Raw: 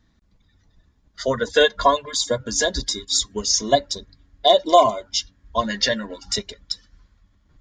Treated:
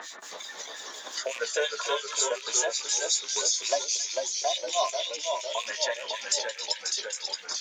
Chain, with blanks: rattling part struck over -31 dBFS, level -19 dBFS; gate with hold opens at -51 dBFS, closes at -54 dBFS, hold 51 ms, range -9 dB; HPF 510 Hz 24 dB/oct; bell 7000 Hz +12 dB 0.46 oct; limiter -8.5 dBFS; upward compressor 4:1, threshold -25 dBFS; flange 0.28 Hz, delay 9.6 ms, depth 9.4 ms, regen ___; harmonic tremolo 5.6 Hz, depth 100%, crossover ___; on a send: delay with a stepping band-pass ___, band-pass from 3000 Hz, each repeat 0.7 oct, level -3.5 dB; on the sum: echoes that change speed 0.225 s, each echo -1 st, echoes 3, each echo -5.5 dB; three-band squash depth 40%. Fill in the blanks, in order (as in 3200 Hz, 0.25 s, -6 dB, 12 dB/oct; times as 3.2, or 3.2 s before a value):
+50%, 2100 Hz, 0.269 s